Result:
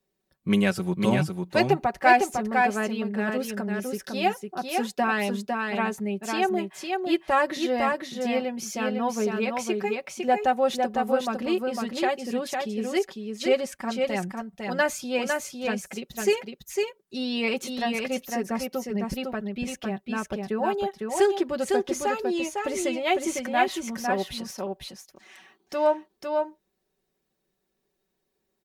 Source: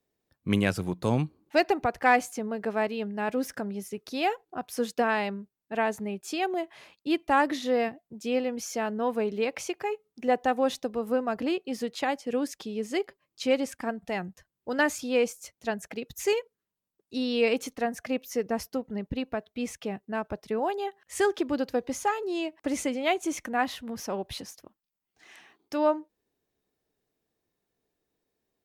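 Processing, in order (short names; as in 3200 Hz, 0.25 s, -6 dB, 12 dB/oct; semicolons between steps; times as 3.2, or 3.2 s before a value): comb 5.3 ms, depth 76%; echo 0.504 s -4 dB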